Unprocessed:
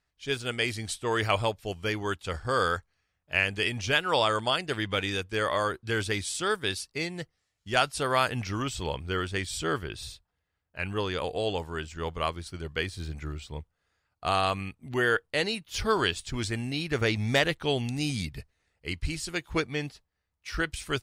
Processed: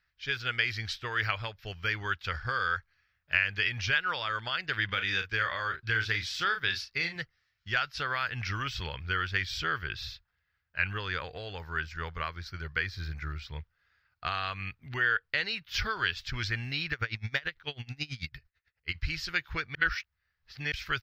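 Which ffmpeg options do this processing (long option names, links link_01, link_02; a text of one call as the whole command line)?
ffmpeg -i in.wav -filter_complex "[0:a]asettb=1/sr,asplit=3[link_01][link_02][link_03];[link_01]atrim=end=4.854[link_04];[link_02]atrim=start=4.85:end=7.16,asetpts=PTS-STARTPTS,afade=type=in:duration=0.004:curve=qsin,afade=type=out:start_time=2.306:duration=0.004:curve=qsin,asplit=2[link_05][link_06];[link_06]adelay=36,volume=-8.5dB[link_07];[link_05][link_07]amix=inputs=2:normalize=0,atrim=end_sample=101871[link_08];[link_03]atrim=start=7.156[link_09];[link_04][link_08]acrossfade=duration=0.004:curve1=hsin:curve2=qsin[link_10];[link_10][link_09]acrossfade=duration=0.004:curve1=qsin:curve2=hsin,asettb=1/sr,asplit=3[link_11][link_12][link_13];[link_11]atrim=end=11.084[link_14];[link_12]atrim=start=11.08:end=13.45,asetpts=PTS-STARTPTS,afade=type=in:duration=0.004:curve=qsin,afade=type=out:start_time=2.366:duration=0.004:curve=qsin,equalizer=frequency=3000:width_type=o:width=0.55:gain=-6[link_15];[link_13]atrim=start=13.446[link_16];[link_14][link_15]acrossfade=duration=0.004:curve1=hsin:curve2=qsin[link_17];[link_17][link_16]acrossfade=duration=0.004:curve1=qsin:curve2=hsin,asplit=3[link_18][link_19][link_20];[link_18]afade=type=out:start_time=16.91:duration=0.02[link_21];[link_19]aeval=exprs='val(0)*pow(10,-26*(0.5-0.5*cos(2*PI*9.1*n/s))/20)':channel_layout=same,afade=type=in:start_time=16.91:duration=0.02,afade=type=out:start_time=18.94:duration=0.02[link_22];[link_20]afade=type=in:start_time=18.94:duration=0.02[link_23];[link_21][link_22][link_23]amix=inputs=3:normalize=0,asplit=3[link_24][link_25][link_26];[link_24]atrim=end=19.752[link_27];[link_25]atrim=start=19.748:end=20.722,asetpts=PTS-STARTPTS,areverse[link_28];[link_26]atrim=start=20.718[link_29];[link_27][link_28]acrossfade=duration=0.004:curve1=hsin:curve2=hsin[link_30];[link_30][link_29]acrossfade=duration=0.004:curve1=hsin:curve2=hsin,equalizer=frequency=570:width_type=o:width=1.3:gain=6.5,acompressor=threshold=-26dB:ratio=6,firequalizer=gain_entry='entry(110,0);entry(240,-12);entry(640,-14);entry(1500,8);entry(3100,2);entry(5200,2);entry(8900,-29);entry(14000,0)':delay=0.05:min_phase=1" out.wav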